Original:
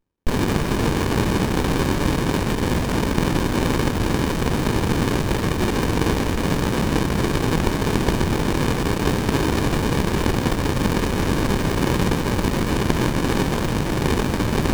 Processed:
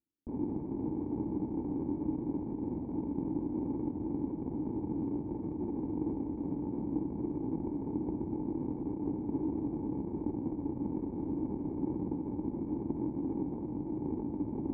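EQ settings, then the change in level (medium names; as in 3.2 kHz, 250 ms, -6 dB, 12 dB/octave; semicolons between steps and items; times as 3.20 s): cascade formant filter u; high-pass 46 Hz; band-stop 2.8 kHz, Q 29; -6.5 dB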